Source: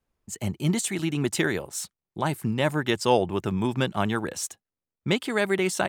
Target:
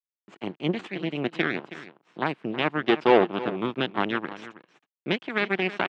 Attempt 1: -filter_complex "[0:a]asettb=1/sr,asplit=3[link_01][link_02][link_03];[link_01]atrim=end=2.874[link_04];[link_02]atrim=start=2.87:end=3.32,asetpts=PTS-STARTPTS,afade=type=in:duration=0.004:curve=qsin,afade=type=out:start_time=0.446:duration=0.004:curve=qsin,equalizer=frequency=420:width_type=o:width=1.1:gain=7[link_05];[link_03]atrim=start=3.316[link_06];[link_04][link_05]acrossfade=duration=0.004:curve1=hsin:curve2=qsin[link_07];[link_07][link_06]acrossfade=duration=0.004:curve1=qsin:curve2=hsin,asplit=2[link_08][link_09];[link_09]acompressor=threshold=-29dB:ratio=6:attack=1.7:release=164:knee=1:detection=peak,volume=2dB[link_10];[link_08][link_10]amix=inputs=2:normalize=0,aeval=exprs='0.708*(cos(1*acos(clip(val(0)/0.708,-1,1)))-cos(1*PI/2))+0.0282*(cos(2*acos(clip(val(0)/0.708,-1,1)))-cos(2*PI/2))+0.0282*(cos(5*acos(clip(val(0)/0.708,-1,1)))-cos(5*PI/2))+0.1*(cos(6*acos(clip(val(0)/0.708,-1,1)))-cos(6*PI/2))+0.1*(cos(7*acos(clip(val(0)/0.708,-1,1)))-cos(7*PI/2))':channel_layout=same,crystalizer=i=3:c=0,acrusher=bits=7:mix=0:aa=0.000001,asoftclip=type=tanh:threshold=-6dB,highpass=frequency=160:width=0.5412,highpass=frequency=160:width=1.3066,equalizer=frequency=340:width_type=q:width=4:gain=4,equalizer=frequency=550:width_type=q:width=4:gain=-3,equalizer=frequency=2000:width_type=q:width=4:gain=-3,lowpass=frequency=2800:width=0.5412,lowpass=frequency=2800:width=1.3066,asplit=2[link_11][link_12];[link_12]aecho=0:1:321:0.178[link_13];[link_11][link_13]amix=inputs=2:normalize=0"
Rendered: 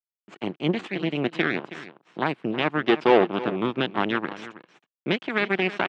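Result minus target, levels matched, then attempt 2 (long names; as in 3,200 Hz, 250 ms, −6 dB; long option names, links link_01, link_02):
downward compressor: peak gain reduction −7.5 dB
-filter_complex "[0:a]asettb=1/sr,asplit=3[link_01][link_02][link_03];[link_01]atrim=end=2.874[link_04];[link_02]atrim=start=2.87:end=3.32,asetpts=PTS-STARTPTS,afade=type=in:duration=0.004:curve=qsin,afade=type=out:start_time=0.446:duration=0.004:curve=qsin,equalizer=frequency=420:width_type=o:width=1.1:gain=7[link_05];[link_03]atrim=start=3.316[link_06];[link_04][link_05]acrossfade=duration=0.004:curve1=hsin:curve2=qsin[link_07];[link_07][link_06]acrossfade=duration=0.004:curve1=qsin:curve2=hsin,asplit=2[link_08][link_09];[link_09]acompressor=threshold=-38dB:ratio=6:attack=1.7:release=164:knee=1:detection=peak,volume=2dB[link_10];[link_08][link_10]amix=inputs=2:normalize=0,aeval=exprs='0.708*(cos(1*acos(clip(val(0)/0.708,-1,1)))-cos(1*PI/2))+0.0282*(cos(2*acos(clip(val(0)/0.708,-1,1)))-cos(2*PI/2))+0.0282*(cos(5*acos(clip(val(0)/0.708,-1,1)))-cos(5*PI/2))+0.1*(cos(6*acos(clip(val(0)/0.708,-1,1)))-cos(6*PI/2))+0.1*(cos(7*acos(clip(val(0)/0.708,-1,1)))-cos(7*PI/2))':channel_layout=same,crystalizer=i=3:c=0,acrusher=bits=7:mix=0:aa=0.000001,asoftclip=type=tanh:threshold=-6dB,highpass=frequency=160:width=0.5412,highpass=frequency=160:width=1.3066,equalizer=frequency=340:width_type=q:width=4:gain=4,equalizer=frequency=550:width_type=q:width=4:gain=-3,equalizer=frequency=2000:width_type=q:width=4:gain=-3,lowpass=frequency=2800:width=0.5412,lowpass=frequency=2800:width=1.3066,asplit=2[link_11][link_12];[link_12]aecho=0:1:321:0.178[link_13];[link_11][link_13]amix=inputs=2:normalize=0"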